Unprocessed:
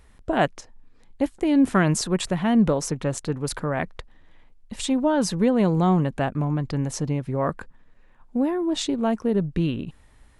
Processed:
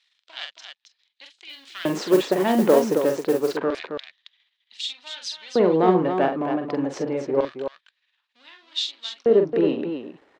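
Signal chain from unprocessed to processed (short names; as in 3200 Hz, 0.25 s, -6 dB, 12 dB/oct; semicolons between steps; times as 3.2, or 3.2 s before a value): half-wave gain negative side -7 dB; LFO high-pass square 0.27 Hz 380–3700 Hz; air absorption 180 m; loudspeakers at several distances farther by 15 m -6 dB, 93 m -7 dB; 1.49–3.57 modulation noise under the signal 22 dB; gain +5 dB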